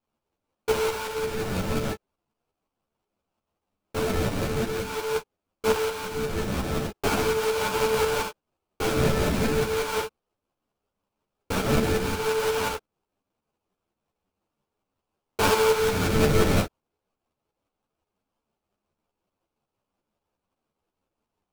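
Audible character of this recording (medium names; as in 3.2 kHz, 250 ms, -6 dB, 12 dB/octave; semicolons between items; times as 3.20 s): phasing stages 6, 0.41 Hz, lowest notch 800–2400 Hz; aliases and images of a low sample rate 1.9 kHz, jitter 20%; tremolo saw up 5.6 Hz, depth 50%; a shimmering, thickened sound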